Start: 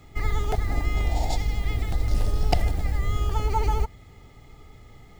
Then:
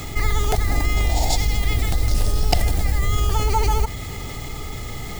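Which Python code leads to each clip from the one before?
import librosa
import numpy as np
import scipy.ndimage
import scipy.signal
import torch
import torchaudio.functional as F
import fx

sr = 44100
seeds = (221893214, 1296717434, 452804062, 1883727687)

y = fx.high_shelf(x, sr, hz=3800.0, db=11.5)
y = fx.env_flatten(y, sr, amount_pct=50)
y = y * librosa.db_to_amplitude(1.5)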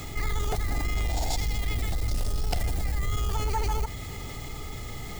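y = 10.0 ** (-14.0 / 20.0) * np.tanh(x / 10.0 ** (-14.0 / 20.0))
y = y * librosa.db_to_amplitude(-6.0)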